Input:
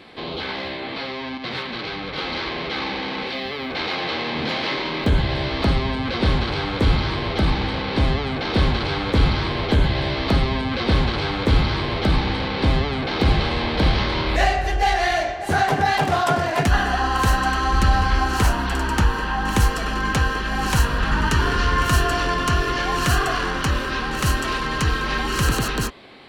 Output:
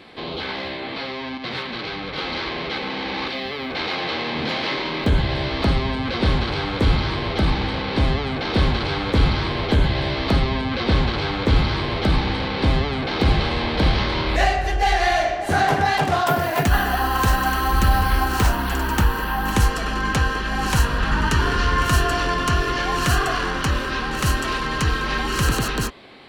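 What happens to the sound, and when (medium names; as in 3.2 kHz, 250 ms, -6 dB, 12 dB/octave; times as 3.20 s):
2.78–3.28 s: reverse
10.39–11.57 s: peaking EQ 11 kHz -8 dB 0.55 oct
14.82–15.71 s: reverb throw, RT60 0.9 s, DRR 5 dB
16.27–19.53 s: careless resampling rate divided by 3×, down none, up hold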